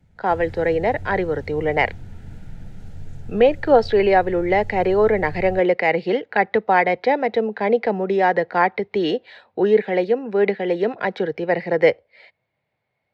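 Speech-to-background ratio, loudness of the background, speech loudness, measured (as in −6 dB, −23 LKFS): 19.5 dB, −39.0 LKFS, −19.5 LKFS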